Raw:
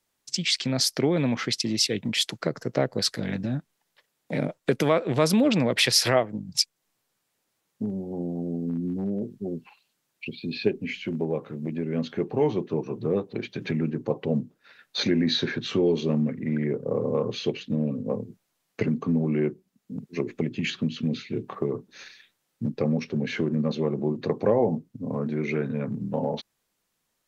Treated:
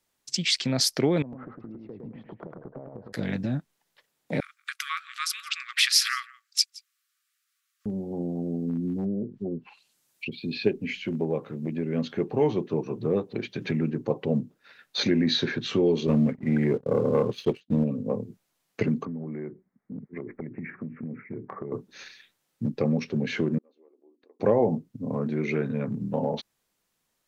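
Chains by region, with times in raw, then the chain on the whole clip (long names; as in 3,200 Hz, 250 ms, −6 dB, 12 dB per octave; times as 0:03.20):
0:01.22–0:03.13: low-pass filter 1,000 Hz 24 dB per octave + downward compressor 12 to 1, threshold −37 dBFS + feedback echo with a swinging delay time 106 ms, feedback 30%, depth 82 cents, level −3.5 dB
0:04.40–0:07.86: linear-phase brick-wall high-pass 1,100 Hz + single-tap delay 170 ms −22.5 dB
0:09.04–0:10.32: treble cut that deepens with the level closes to 460 Hz, closed at −26 dBFS + high-shelf EQ 4,800 Hz +11 dB
0:16.07–0:17.84: downward expander −27 dBFS + leveller curve on the samples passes 1
0:19.05–0:21.72: Butterworth low-pass 2,200 Hz 96 dB per octave + downward compressor 5 to 1, threshold −32 dBFS
0:23.58–0:24.40: linear-phase brick-wall high-pass 250 Hz + spectral tilt −2 dB per octave + gate with flip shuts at −26 dBFS, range −34 dB
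whole clip: no processing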